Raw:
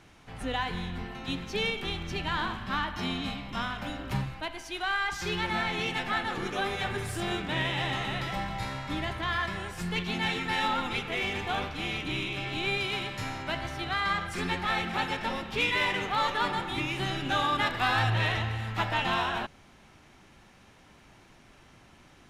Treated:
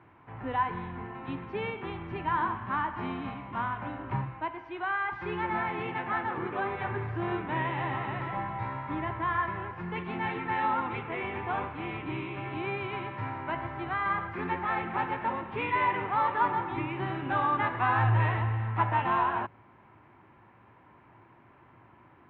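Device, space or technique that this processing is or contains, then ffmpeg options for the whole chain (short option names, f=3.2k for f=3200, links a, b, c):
bass cabinet: -af "highpass=89,equalizer=f=110:t=q:w=4:g=8,equalizer=f=190:t=q:w=4:g=-3,equalizer=f=340:t=q:w=4:g=5,equalizer=f=990:t=q:w=4:g=10,lowpass=f=2.2k:w=0.5412,lowpass=f=2.2k:w=1.3066,volume=-2.5dB"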